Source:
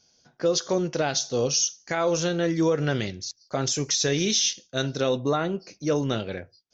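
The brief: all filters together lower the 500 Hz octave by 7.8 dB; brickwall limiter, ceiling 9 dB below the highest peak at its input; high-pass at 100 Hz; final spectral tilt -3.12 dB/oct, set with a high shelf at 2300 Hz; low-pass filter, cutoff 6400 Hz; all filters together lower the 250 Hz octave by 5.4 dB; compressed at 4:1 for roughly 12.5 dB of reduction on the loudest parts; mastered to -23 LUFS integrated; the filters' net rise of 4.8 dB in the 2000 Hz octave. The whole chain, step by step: HPF 100 Hz; LPF 6400 Hz; bell 250 Hz -4.5 dB; bell 500 Hz -8.5 dB; bell 2000 Hz +5.5 dB; high shelf 2300 Hz +3.5 dB; compressor 4:1, threshold -34 dBFS; gain +16 dB; limiter -12.5 dBFS

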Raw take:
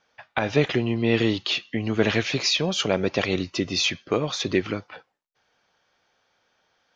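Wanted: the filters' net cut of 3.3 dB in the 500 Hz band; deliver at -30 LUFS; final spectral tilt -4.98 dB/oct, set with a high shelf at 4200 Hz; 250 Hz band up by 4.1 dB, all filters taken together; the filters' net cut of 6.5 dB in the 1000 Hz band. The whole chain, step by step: bell 250 Hz +7.5 dB; bell 500 Hz -6 dB; bell 1000 Hz -7 dB; high shelf 4200 Hz -7 dB; gain -6 dB

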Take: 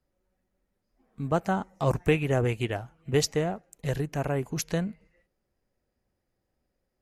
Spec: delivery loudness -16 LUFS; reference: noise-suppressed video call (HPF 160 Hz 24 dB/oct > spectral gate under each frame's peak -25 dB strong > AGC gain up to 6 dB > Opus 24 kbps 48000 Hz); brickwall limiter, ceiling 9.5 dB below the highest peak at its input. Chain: limiter -20.5 dBFS; HPF 160 Hz 24 dB/oct; spectral gate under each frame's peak -25 dB strong; AGC gain up to 6 dB; gain +17.5 dB; Opus 24 kbps 48000 Hz

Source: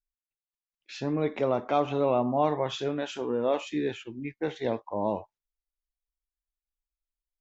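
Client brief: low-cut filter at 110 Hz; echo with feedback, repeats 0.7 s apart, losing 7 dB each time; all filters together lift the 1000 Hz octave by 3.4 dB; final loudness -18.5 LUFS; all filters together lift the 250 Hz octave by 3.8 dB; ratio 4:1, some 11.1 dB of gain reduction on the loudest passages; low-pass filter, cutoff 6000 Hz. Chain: HPF 110 Hz; LPF 6000 Hz; bell 250 Hz +4.5 dB; bell 1000 Hz +4.5 dB; compressor 4:1, threshold -31 dBFS; feedback echo 0.7 s, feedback 45%, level -7 dB; gain +16.5 dB

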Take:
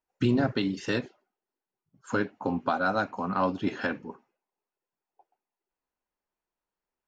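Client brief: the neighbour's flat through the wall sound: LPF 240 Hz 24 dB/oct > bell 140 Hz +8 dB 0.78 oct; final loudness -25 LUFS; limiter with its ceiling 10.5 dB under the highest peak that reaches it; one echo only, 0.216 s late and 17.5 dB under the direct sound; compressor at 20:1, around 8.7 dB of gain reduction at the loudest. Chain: compressor 20:1, threshold -28 dBFS; limiter -27.5 dBFS; LPF 240 Hz 24 dB/oct; bell 140 Hz +8 dB 0.78 oct; echo 0.216 s -17.5 dB; gain +16.5 dB

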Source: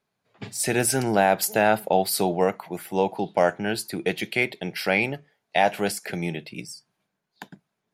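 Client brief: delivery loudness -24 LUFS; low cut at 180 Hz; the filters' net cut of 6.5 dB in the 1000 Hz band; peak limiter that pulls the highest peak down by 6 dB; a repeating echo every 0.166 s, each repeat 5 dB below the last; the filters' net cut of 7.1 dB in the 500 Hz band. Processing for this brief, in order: HPF 180 Hz; bell 500 Hz -7.5 dB; bell 1000 Hz -5.5 dB; limiter -15.5 dBFS; feedback echo 0.166 s, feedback 56%, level -5 dB; gain +4 dB

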